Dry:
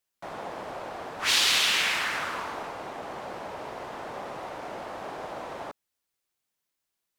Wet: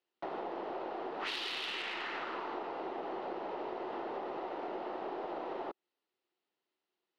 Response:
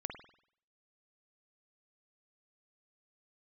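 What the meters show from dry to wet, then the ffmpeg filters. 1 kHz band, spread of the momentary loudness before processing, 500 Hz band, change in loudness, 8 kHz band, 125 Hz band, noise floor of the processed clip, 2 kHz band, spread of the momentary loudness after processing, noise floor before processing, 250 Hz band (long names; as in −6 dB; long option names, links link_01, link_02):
−5.0 dB, 17 LU, −1.5 dB, −11.0 dB, below −25 dB, −13.0 dB, below −85 dBFS, −13.0 dB, 4 LU, −84 dBFS, 0.0 dB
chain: -af "highpass=300,equalizer=frequency=360:width_type=q:width=4:gain=9,equalizer=frequency=590:width_type=q:width=4:gain=-4,equalizer=frequency=1100:width_type=q:width=4:gain=-5,equalizer=frequency=1600:width_type=q:width=4:gain=-8,equalizer=frequency=2300:width_type=q:width=4:gain=-8,equalizer=frequency=3400:width_type=q:width=4:gain=-5,lowpass=frequency=3500:width=0.5412,lowpass=frequency=3500:width=1.3066,aeval=exprs='0.126*(cos(1*acos(clip(val(0)/0.126,-1,1)))-cos(1*PI/2))+0.0141*(cos(3*acos(clip(val(0)/0.126,-1,1)))-cos(3*PI/2))+0.00631*(cos(4*acos(clip(val(0)/0.126,-1,1)))-cos(4*PI/2))+0.00447*(cos(6*acos(clip(val(0)/0.126,-1,1)))-cos(6*PI/2))':channel_layout=same,acompressor=threshold=-45dB:ratio=6,volume=8.5dB"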